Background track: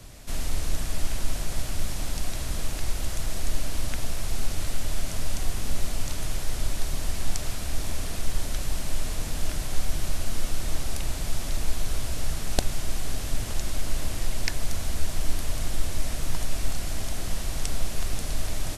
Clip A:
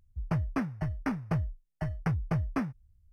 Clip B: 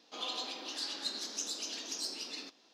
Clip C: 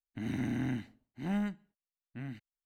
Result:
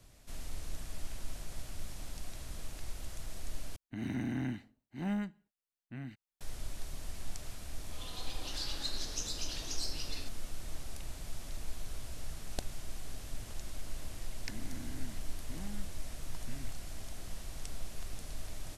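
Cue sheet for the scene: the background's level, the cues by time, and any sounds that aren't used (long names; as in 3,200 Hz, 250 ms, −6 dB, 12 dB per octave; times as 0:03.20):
background track −14 dB
0:03.76: overwrite with C −2 dB
0:07.79: mix in B −13 dB + automatic gain control
0:14.32: mix in C −0.5 dB + downward compressor, threshold −44 dBFS
not used: A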